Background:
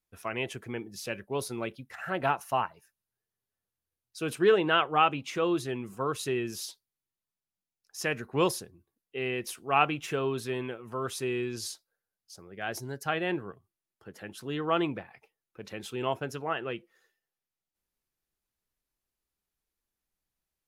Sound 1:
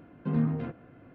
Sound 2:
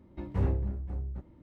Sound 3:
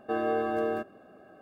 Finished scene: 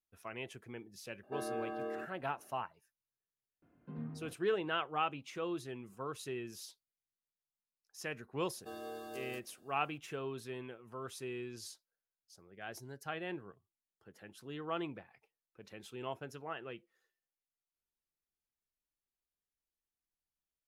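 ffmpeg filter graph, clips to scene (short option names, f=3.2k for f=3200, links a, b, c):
-filter_complex "[3:a]asplit=2[a][b];[0:a]volume=-11dB[c];[a]highpass=130[d];[b]aexciter=amount=12.5:drive=4.2:freq=3.5k[e];[d]atrim=end=1.41,asetpts=PTS-STARTPTS,volume=-11.5dB,afade=t=in:d=0.004:c=hsin,afade=t=out:st=1.406:d=0.004:c=hsin,adelay=1230[f];[1:a]atrim=end=1.14,asetpts=PTS-STARTPTS,volume=-17dB,afade=t=in:d=0.004:c=hsin,afade=t=out:st=1.136:d=0.004:c=hsin,adelay=3620[g];[e]atrim=end=1.41,asetpts=PTS-STARTPTS,volume=-17.5dB,afade=t=in:d=0.004:c=hsin,afade=t=out:st=1.406:d=0.004:c=hsin,adelay=8570[h];[c][f][g][h]amix=inputs=4:normalize=0"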